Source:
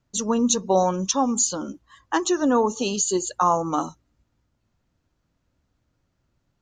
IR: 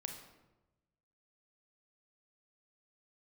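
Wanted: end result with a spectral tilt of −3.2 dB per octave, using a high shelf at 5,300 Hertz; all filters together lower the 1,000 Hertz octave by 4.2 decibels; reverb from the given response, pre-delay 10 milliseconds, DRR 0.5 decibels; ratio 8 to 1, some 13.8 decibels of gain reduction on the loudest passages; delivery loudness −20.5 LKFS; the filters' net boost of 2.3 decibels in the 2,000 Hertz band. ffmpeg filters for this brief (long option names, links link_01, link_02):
-filter_complex "[0:a]equalizer=frequency=1000:width_type=o:gain=-6.5,equalizer=frequency=2000:width_type=o:gain=5,highshelf=frequency=5300:gain=4.5,acompressor=threshold=-30dB:ratio=8,asplit=2[link_01][link_02];[1:a]atrim=start_sample=2205,adelay=10[link_03];[link_02][link_03]afir=irnorm=-1:irlink=0,volume=1.5dB[link_04];[link_01][link_04]amix=inputs=2:normalize=0,volume=10.5dB"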